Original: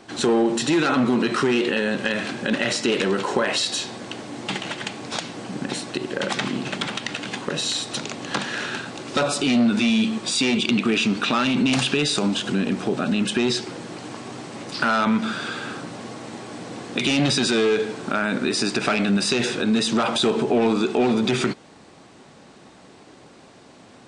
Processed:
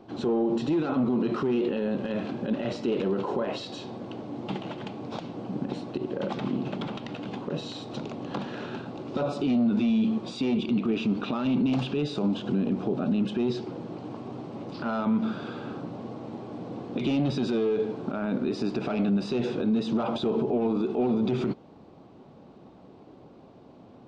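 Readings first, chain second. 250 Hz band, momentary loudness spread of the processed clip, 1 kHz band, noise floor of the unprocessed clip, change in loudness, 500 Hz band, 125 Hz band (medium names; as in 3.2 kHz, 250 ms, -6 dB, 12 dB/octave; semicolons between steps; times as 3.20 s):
-4.0 dB, 12 LU, -9.0 dB, -48 dBFS, -6.5 dB, -5.0 dB, -3.0 dB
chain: tape spacing loss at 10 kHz 36 dB; peak limiter -18 dBFS, peak gain reduction 7.5 dB; peaking EQ 1.8 kHz -11.5 dB 0.9 oct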